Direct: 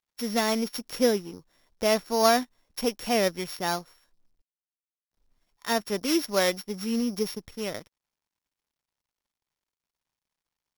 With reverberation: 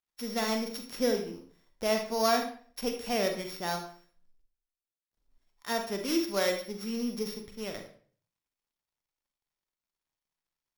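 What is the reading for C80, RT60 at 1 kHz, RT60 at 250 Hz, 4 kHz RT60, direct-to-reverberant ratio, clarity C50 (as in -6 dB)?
11.0 dB, 0.40 s, 0.50 s, 0.40 s, 4.0 dB, 7.0 dB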